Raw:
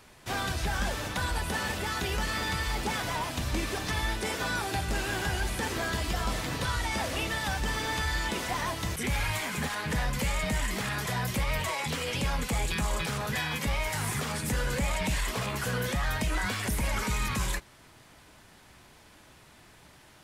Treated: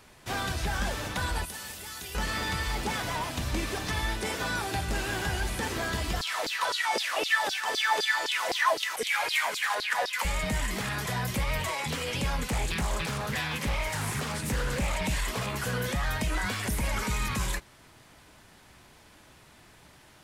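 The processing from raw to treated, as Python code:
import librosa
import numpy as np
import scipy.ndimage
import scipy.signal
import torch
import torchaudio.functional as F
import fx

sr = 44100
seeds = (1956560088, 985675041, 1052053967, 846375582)

y = fx.pre_emphasis(x, sr, coefficient=0.8, at=(1.45, 2.15))
y = fx.filter_lfo_highpass(y, sr, shape='saw_down', hz=3.9, low_hz=370.0, high_hz=5100.0, q=5.4, at=(6.21, 10.25))
y = fx.doppler_dist(y, sr, depth_ms=0.31, at=(12.47, 15.02))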